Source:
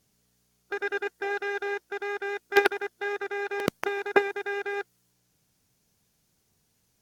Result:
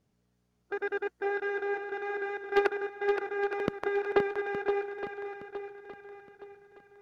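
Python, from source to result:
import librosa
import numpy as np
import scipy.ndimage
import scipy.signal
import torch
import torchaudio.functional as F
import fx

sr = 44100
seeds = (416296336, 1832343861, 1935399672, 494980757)

p1 = fx.lowpass(x, sr, hz=1100.0, slope=6)
p2 = 10.0 ** (-15.5 / 20.0) * np.tanh(p1 / 10.0 ** (-15.5 / 20.0))
y = p2 + fx.echo_swing(p2, sr, ms=867, ratio=1.5, feedback_pct=35, wet_db=-7.0, dry=0)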